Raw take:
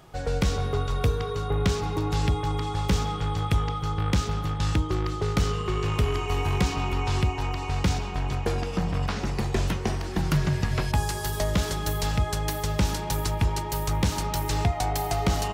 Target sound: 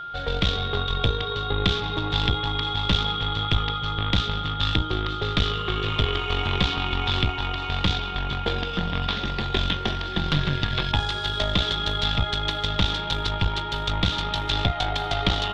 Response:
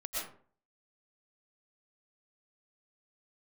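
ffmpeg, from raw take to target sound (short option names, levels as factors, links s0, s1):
-af "aeval=exprs='0.2*(cos(1*acos(clip(val(0)/0.2,-1,1)))-cos(1*PI/2))+0.0794*(cos(2*acos(clip(val(0)/0.2,-1,1)))-cos(2*PI/2))':c=same,lowpass=f=3500:t=q:w=8.3,aeval=exprs='val(0)+0.0282*sin(2*PI*1400*n/s)':c=same,volume=0.841"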